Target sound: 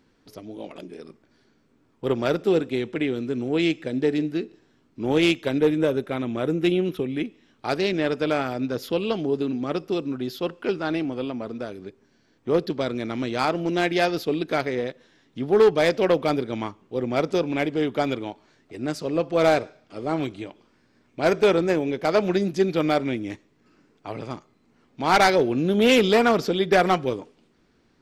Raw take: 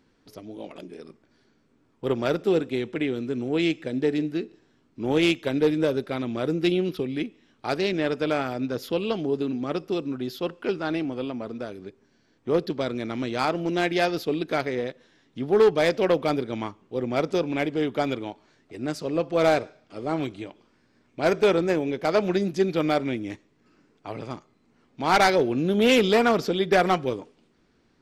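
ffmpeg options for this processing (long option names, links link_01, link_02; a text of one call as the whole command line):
ffmpeg -i in.wav -filter_complex "[0:a]asettb=1/sr,asplit=3[link_01][link_02][link_03];[link_01]atrim=end=5.584[link_04];[link_02]atrim=start=5.58:end=7.25,asetpts=PTS-STARTPTS,afade=type=in:duration=0.004:curve=qsin,afade=type=out:start_time=1.666:duration=0.004:curve=qsin,equalizer=frequency=4700:width_type=o:width=0.32:gain=-14[link_05];[link_03]atrim=start=7.246[link_06];[link_04][link_05]acrossfade=duration=0.004:curve1=hsin:curve2=qsin[link_07];[link_07][link_06]acrossfade=duration=0.004:curve1=qsin:curve2=hsin,volume=1.5dB" out.wav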